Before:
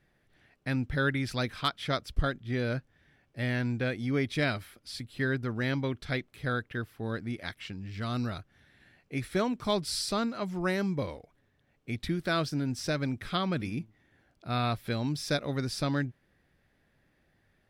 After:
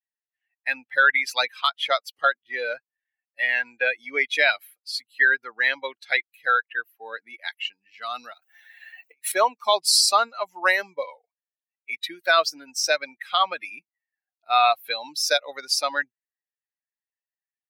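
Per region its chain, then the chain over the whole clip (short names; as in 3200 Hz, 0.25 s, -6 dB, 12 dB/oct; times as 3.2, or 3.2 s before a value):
8.33–9.32 G.711 law mismatch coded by mu + HPF 64 Hz 24 dB/oct + negative-ratio compressor -45 dBFS
whole clip: per-bin expansion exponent 2; HPF 680 Hz 24 dB/oct; maximiser +26.5 dB; gain -6.5 dB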